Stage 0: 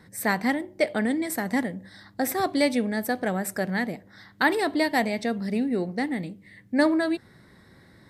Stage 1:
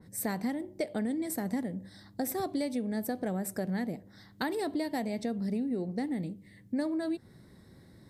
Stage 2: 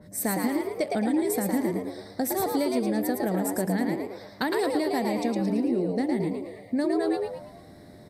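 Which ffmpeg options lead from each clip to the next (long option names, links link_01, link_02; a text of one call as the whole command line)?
ffmpeg -i in.wav -af "equalizer=frequency=1700:width=0.52:gain=-10.5,acompressor=threshold=-29dB:ratio=6,adynamicequalizer=threshold=0.00224:dfrequency=2500:dqfactor=0.7:tfrequency=2500:tqfactor=0.7:attack=5:release=100:ratio=0.375:range=1.5:mode=cutabove:tftype=highshelf" out.wav
ffmpeg -i in.wav -filter_complex "[0:a]aeval=exprs='val(0)+0.000891*sin(2*PI*600*n/s)':channel_layout=same,bandreject=frequency=60:width_type=h:width=6,bandreject=frequency=120:width_type=h:width=6,asplit=6[link_01][link_02][link_03][link_04][link_05][link_06];[link_02]adelay=111,afreqshift=91,volume=-3.5dB[link_07];[link_03]adelay=222,afreqshift=182,volume=-11dB[link_08];[link_04]adelay=333,afreqshift=273,volume=-18.6dB[link_09];[link_05]adelay=444,afreqshift=364,volume=-26.1dB[link_10];[link_06]adelay=555,afreqshift=455,volume=-33.6dB[link_11];[link_01][link_07][link_08][link_09][link_10][link_11]amix=inputs=6:normalize=0,volume=5dB" out.wav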